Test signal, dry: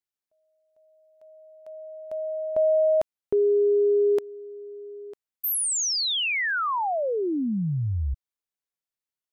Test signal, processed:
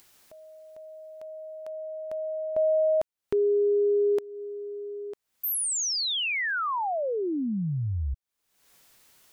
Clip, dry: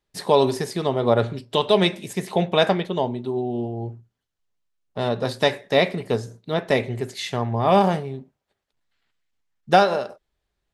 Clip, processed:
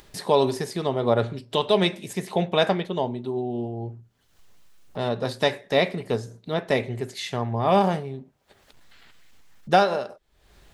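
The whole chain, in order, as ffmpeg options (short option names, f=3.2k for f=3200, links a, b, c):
-af "acompressor=mode=upward:threshold=-27dB:ratio=2.5:attack=3.8:release=307:knee=2.83:detection=peak,volume=-2.5dB"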